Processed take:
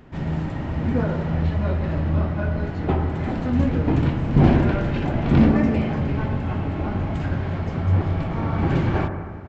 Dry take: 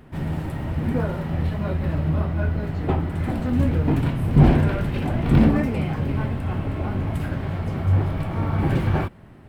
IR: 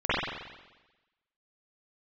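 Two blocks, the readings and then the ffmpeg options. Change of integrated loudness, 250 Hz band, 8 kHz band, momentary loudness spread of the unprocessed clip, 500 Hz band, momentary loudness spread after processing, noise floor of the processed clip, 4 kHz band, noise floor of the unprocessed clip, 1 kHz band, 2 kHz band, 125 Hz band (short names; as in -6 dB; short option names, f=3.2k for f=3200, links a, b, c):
+0.5 dB, +1.5 dB, n/a, 10 LU, +2.0 dB, 9 LU, -30 dBFS, +0.5 dB, -44 dBFS, +1.5 dB, +1.5 dB, -0.5 dB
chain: -filter_complex "[0:a]aresample=16000,aresample=44100,bandreject=f=50:t=h:w=6,bandreject=f=100:t=h:w=6,bandreject=f=150:t=h:w=6,asplit=2[a][b];[1:a]atrim=start_sample=2205,asetrate=26460,aresample=44100[c];[b][c]afir=irnorm=-1:irlink=0,volume=-25.5dB[d];[a][d]amix=inputs=2:normalize=0"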